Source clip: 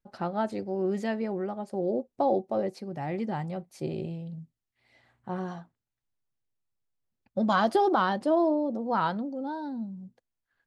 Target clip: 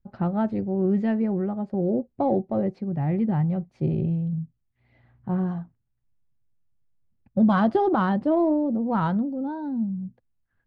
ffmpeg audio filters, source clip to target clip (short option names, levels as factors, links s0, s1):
-af "adynamicsmooth=sensitivity=1:basefreq=3600,bass=f=250:g=15,treble=f=4000:g=-8"